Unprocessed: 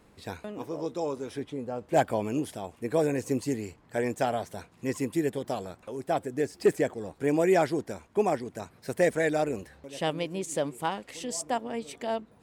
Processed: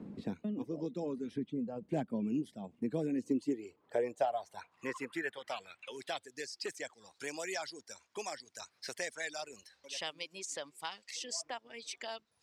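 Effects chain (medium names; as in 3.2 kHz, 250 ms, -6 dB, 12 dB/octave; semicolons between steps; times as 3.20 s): band-pass sweep 210 Hz -> 5.3 kHz, 3.04–6.53 s; reverb removal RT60 1.3 s; three bands compressed up and down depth 70%; trim +5.5 dB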